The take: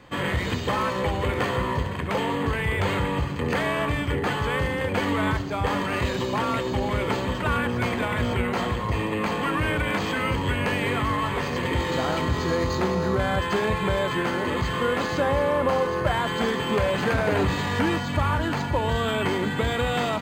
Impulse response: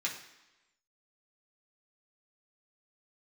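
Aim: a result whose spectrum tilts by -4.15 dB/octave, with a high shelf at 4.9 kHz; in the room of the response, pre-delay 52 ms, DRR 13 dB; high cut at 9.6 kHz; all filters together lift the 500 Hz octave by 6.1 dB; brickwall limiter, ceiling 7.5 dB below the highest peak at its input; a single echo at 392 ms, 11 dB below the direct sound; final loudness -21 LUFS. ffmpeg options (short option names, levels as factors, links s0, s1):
-filter_complex "[0:a]lowpass=9600,equalizer=f=500:t=o:g=7,highshelf=f=4900:g=7.5,alimiter=limit=0.224:level=0:latency=1,aecho=1:1:392:0.282,asplit=2[s0][s1];[1:a]atrim=start_sample=2205,adelay=52[s2];[s1][s2]afir=irnorm=-1:irlink=0,volume=0.141[s3];[s0][s3]amix=inputs=2:normalize=0,volume=1.19"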